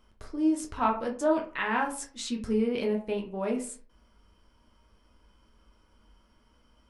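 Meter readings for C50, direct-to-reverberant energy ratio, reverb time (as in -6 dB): 11.0 dB, 0.0 dB, 0.45 s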